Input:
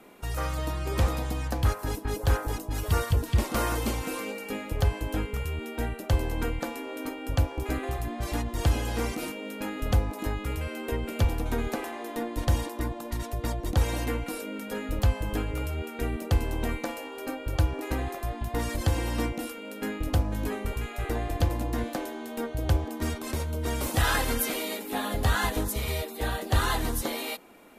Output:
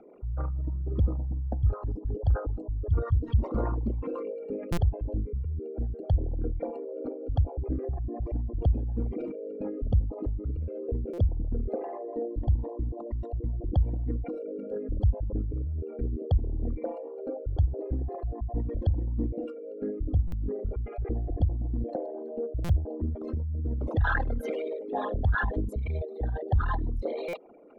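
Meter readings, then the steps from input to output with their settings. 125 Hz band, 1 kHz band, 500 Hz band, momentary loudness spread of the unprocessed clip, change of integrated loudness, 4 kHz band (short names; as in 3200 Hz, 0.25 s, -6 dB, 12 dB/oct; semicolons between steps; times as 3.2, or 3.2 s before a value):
+0.5 dB, -6.5 dB, -1.0 dB, 8 LU, -1.0 dB, under -15 dB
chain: formant sharpening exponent 3; LPF 5700 Hz 24 dB/oct; stuck buffer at 4.72/11.13/20.27/22.64/27.28, samples 256, times 8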